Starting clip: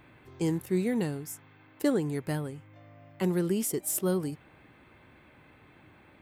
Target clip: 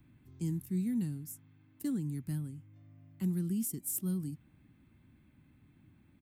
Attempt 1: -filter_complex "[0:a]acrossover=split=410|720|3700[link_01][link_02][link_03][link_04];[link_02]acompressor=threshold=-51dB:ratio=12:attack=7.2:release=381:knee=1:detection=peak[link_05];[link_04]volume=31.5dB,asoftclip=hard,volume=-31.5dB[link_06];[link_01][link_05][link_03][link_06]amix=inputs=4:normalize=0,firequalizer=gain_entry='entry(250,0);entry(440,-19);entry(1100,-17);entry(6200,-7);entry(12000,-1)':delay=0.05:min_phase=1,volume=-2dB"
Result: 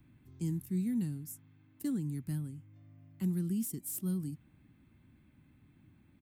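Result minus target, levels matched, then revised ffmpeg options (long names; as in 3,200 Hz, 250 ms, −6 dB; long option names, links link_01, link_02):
gain into a clipping stage and back: distortion +26 dB
-filter_complex "[0:a]acrossover=split=410|720|3700[link_01][link_02][link_03][link_04];[link_02]acompressor=threshold=-51dB:ratio=12:attack=7.2:release=381:knee=1:detection=peak[link_05];[link_04]volume=20.5dB,asoftclip=hard,volume=-20.5dB[link_06];[link_01][link_05][link_03][link_06]amix=inputs=4:normalize=0,firequalizer=gain_entry='entry(250,0);entry(440,-19);entry(1100,-17);entry(6200,-7);entry(12000,-1)':delay=0.05:min_phase=1,volume=-2dB"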